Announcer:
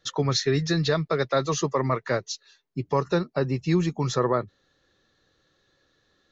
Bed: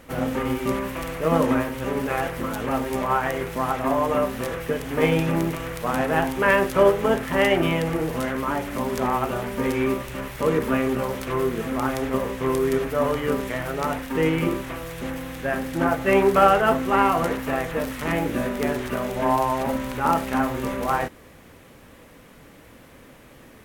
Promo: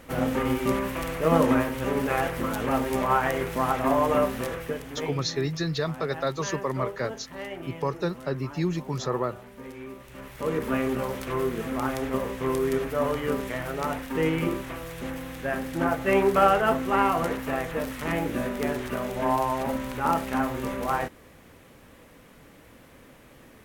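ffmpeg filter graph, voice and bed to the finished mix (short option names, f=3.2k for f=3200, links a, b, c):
-filter_complex "[0:a]adelay=4900,volume=-4.5dB[a];[1:a]volume=13.5dB,afade=t=out:st=4.23:d=0.92:silence=0.141254,afade=t=in:st=9.94:d=0.88:silence=0.199526[b];[a][b]amix=inputs=2:normalize=0"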